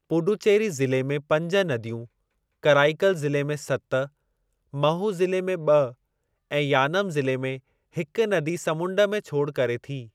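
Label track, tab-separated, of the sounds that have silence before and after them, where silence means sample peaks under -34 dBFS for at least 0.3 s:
2.640000	4.060000	sound
4.740000	5.900000	sound
6.520000	7.570000	sound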